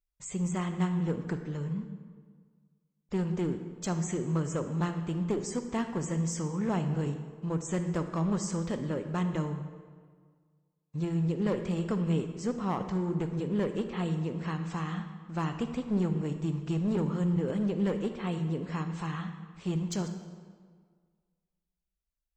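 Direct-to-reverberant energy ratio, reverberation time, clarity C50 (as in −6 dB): 8.0 dB, 1.7 s, 8.5 dB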